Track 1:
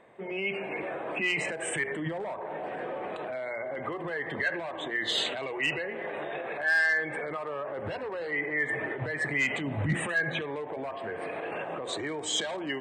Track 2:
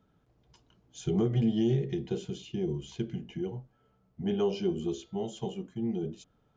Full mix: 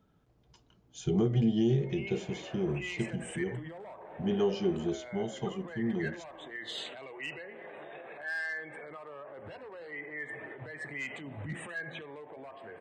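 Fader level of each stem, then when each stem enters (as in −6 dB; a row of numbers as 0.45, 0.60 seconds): −11.0, 0.0 decibels; 1.60, 0.00 seconds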